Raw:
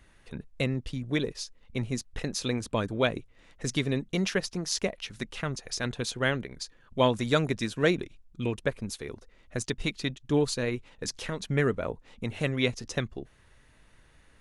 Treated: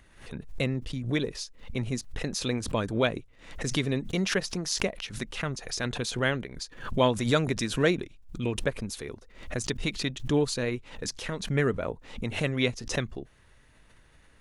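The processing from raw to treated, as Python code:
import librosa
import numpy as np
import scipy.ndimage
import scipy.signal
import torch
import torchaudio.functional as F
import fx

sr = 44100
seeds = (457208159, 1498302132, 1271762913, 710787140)

y = fx.pre_swell(x, sr, db_per_s=100.0)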